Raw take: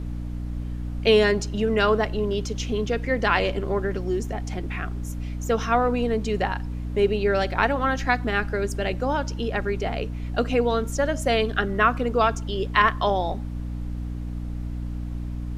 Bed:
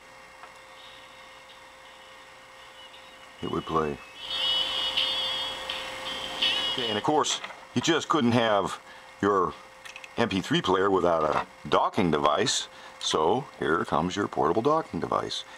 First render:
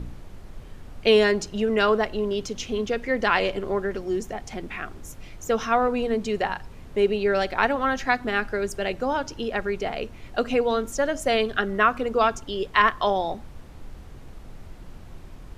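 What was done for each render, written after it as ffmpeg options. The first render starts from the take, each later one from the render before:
-af "bandreject=f=60:t=h:w=4,bandreject=f=120:t=h:w=4,bandreject=f=180:t=h:w=4,bandreject=f=240:t=h:w=4,bandreject=f=300:t=h:w=4"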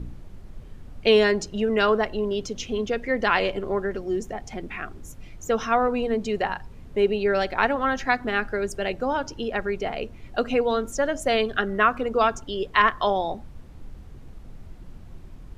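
-af "afftdn=nr=6:nf=-43"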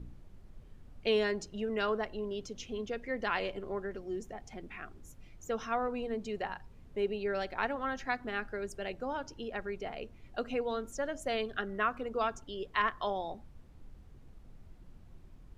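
-af "volume=-11.5dB"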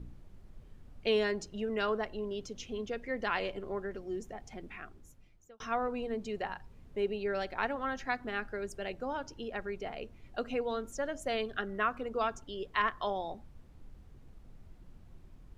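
-filter_complex "[0:a]asplit=2[a][b];[a]atrim=end=5.6,asetpts=PTS-STARTPTS,afade=t=out:st=4.69:d=0.91[c];[b]atrim=start=5.6,asetpts=PTS-STARTPTS,afade=t=in:d=0.004:c=hsin[d];[c][d]concat=n=2:v=0:a=1"

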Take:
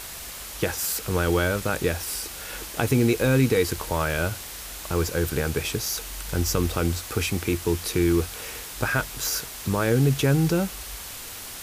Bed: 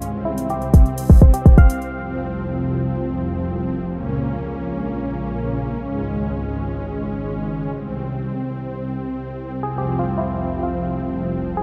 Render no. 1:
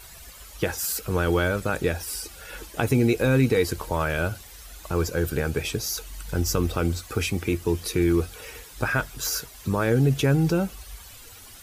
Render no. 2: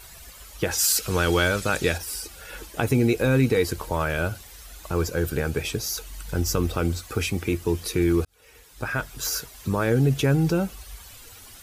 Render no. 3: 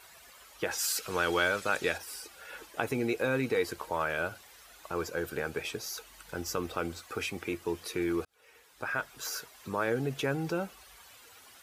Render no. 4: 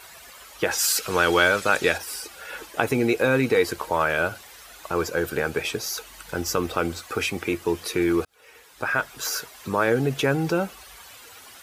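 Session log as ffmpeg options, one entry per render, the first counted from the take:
-af "afftdn=nr=12:nf=-38"
-filter_complex "[0:a]asettb=1/sr,asplit=3[a][b][c];[a]atrim=end=0.714[d];[b]atrim=start=0.71:end=1.98,asetpts=PTS-STARTPTS,afade=t=in:d=0.004:c=qsin,afade=t=out:st=1.266:d=0.004:c=qsin,equalizer=f=5.2k:w=0.41:g=10[e];[c]atrim=start=1.976[f];[d][e]acrossfade=d=0.004:c1=hsin:c2=qsin[g];[g][f]acrossfade=d=0.004:c1=qsin:c2=hsin,asplit=2[h][i];[h]atrim=end=8.25,asetpts=PTS-STARTPTS,afade=t=out:st=8.246:d=0.004:c=hsin[j];[i]atrim=start=8.25,asetpts=PTS-STARTPTS,afade=t=in:d=0.99[k];[j][k]concat=n=2:v=0:a=1"
-af "highpass=f=880:p=1,highshelf=f=2.8k:g=-11.5"
-af "volume=9dB"

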